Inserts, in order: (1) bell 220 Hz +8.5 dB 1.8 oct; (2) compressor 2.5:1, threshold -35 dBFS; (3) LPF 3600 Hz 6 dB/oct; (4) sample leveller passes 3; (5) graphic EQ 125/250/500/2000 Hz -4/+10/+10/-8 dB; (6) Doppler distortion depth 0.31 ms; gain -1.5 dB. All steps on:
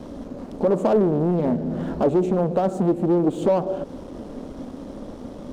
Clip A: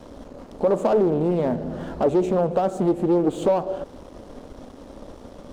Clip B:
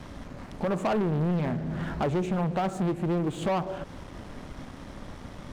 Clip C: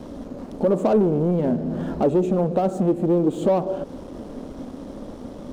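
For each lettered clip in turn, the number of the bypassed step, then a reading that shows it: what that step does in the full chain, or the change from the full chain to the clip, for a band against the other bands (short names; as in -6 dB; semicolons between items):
1, 125 Hz band -3.5 dB; 5, crest factor change -5.5 dB; 6, 2 kHz band -1.5 dB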